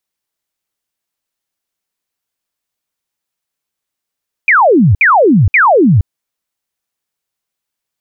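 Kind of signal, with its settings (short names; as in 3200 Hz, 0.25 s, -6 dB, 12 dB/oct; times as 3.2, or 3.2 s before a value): burst of laser zaps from 2500 Hz, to 83 Hz, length 0.47 s sine, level -4.5 dB, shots 3, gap 0.06 s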